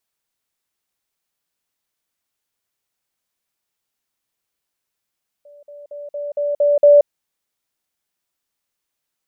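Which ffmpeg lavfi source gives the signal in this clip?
-f lavfi -i "aevalsrc='pow(10,(-41.5+6*floor(t/0.23))/20)*sin(2*PI*581*t)*clip(min(mod(t,0.23),0.18-mod(t,0.23))/0.005,0,1)':d=1.61:s=44100"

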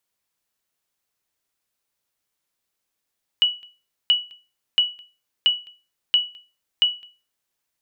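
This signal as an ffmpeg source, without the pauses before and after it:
-f lavfi -i "aevalsrc='0.335*(sin(2*PI*2940*mod(t,0.68))*exp(-6.91*mod(t,0.68)/0.31)+0.0473*sin(2*PI*2940*max(mod(t,0.68)-0.21,0))*exp(-6.91*max(mod(t,0.68)-0.21,0)/0.31))':d=4.08:s=44100"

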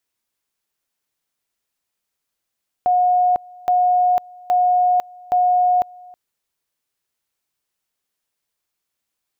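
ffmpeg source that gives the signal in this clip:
-f lavfi -i "aevalsrc='pow(10,(-12.5-25.5*gte(mod(t,0.82),0.5))/20)*sin(2*PI*723*t)':d=3.28:s=44100"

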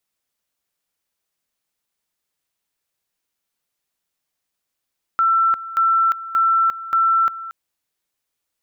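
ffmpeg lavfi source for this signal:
-f lavfi -i "aevalsrc='pow(10,(-13-15.5*gte(mod(t,0.58),0.35))/20)*sin(2*PI*1340*t)':d=2.32:s=44100"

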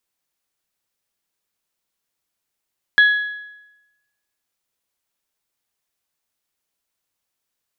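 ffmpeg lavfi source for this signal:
-f lavfi -i "aevalsrc='0.447*pow(10,-3*t/0.99)*sin(2*PI*1680*t)+0.112*pow(10,-3*t/0.804)*sin(2*PI*3360*t)+0.0282*pow(10,-3*t/0.761)*sin(2*PI*4032*t)':d=1.55:s=44100"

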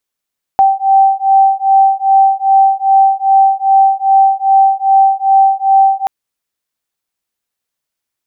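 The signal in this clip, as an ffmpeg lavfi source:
-f lavfi -i "aevalsrc='0.335*(sin(2*PI*777*t)+sin(2*PI*779.5*t))':d=5.48:s=44100"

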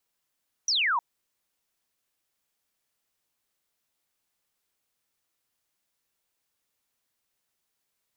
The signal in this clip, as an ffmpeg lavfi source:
-f lavfi -i "aevalsrc='0.0794*clip(t/0.002,0,1)*clip((0.31-t)/0.002,0,1)*sin(2*PI*6100*0.31/log(890/6100)*(exp(log(890/6100)*t/0.31)-1))':d=0.31:s=44100"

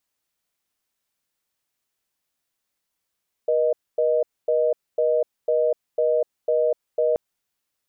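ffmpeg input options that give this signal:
-f lavfi -i "aevalsrc='0.1*(sin(2*PI*480*t)+sin(2*PI*620*t))*clip(min(mod(t,0.5),0.25-mod(t,0.5))/0.005,0,1)':d=3.68:s=44100"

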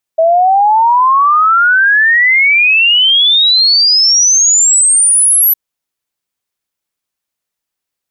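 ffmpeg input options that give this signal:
-f lavfi -i "aevalsrc='0.531*clip(min(t,5.36-t)/0.01,0,1)*sin(2*PI*640*5.36/log(12000/640)*(exp(log(12000/640)*t/5.36)-1))':d=5.36:s=44100"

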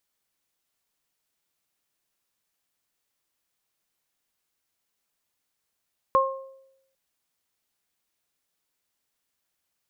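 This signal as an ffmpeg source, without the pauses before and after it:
-f lavfi -i "aevalsrc='0.1*pow(10,-3*t/0.85)*sin(2*PI*535*t)+0.188*pow(10,-3*t/0.47)*sin(2*PI*1070*t)':d=0.8:s=44100"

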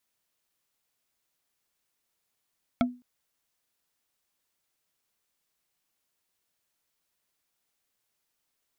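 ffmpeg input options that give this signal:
-f lavfi -i "aevalsrc='0.126*pow(10,-3*t/0.3)*sin(2*PI*247*t)+0.0944*pow(10,-3*t/0.089)*sin(2*PI*681*t)+0.0708*pow(10,-3*t/0.04)*sin(2*PI*1334.8*t)+0.0531*pow(10,-3*t/0.022)*sin(2*PI*2206.5*t)+0.0398*pow(10,-3*t/0.013)*sin(2*PI*3295*t)':d=0.21:s=44100"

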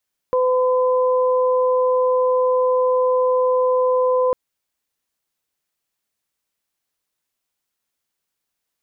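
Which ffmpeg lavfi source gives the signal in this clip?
-f lavfi -i "aevalsrc='0.178*sin(2*PI*507*t)+0.0794*sin(2*PI*1014*t)':d=4:s=44100"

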